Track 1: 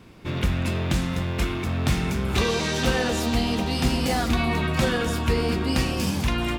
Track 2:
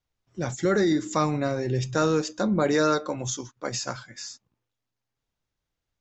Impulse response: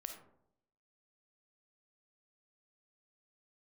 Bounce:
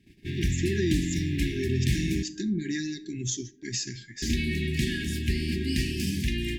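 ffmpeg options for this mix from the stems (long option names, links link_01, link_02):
-filter_complex "[0:a]volume=-5.5dB,asplit=3[link_01][link_02][link_03];[link_01]atrim=end=2.23,asetpts=PTS-STARTPTS,afade=type=out:start_time=2.226:duration=0.004:curve=hsin[link_04];[link_02]atrim=start=2.23:end=4.22,asetpts=PTS-STARTPTS,volume=0[link_05];[link_03]atrim=start=4.22,asetpts=PTS-STARTPTS,afade=type=in:duration=0.004:curve=hsin[link_06];[link_04][link_05][link_06]concat=n=3:v=0:a=1,asplit=2[link_07][link_08];[link_08]volume=-8.5dB[link_09];[1:a]acompressor=threshold=-25dB:ratio=6,volume=-1.5dB,asplit=2[link_10][link_11];[link_11]volume=-5.5dB[link_12];[2:a]atrim=start_sample=2205[link_13];[link_09][link_12]amix=inputs=2:normalize=0[link_14];[link_14][link_13]afir=irnorm=-1:irlink=0[link_15];[link_07][link_10][link_15]amix=inputs=3:normalize=0,afftfilt=real='re*(1-between(b*sr/4096,410,1600))':imag='im*(1-between(b*sr/4096,410,1600))':win_size=4096:overlap=0.75,agate=range=-10dB:threshold=-52dB:ratio=16:detection=peak"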